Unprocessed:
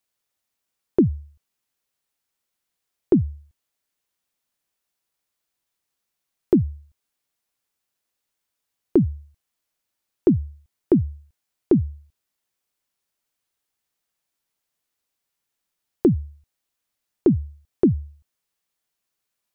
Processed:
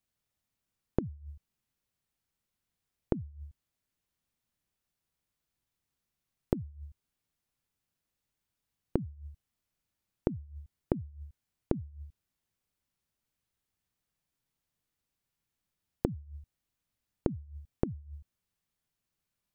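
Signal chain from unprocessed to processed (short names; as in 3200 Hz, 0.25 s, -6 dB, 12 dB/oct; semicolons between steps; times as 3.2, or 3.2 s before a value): tone controls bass +13 dB, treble -2 dB; flipped gate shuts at -14 dBFS, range -25 dB; gain -5 dB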